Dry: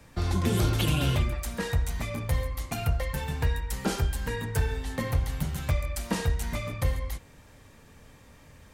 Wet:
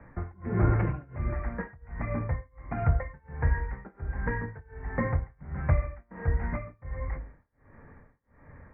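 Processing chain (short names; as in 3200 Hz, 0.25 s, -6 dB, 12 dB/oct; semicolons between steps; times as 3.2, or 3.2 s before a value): steep low-pass 2100 Hz 72 dB/oct; de-hum 52.34 Hz, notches 13; tremolo 1.4 Hz, depth 98%; gain +3.5 dB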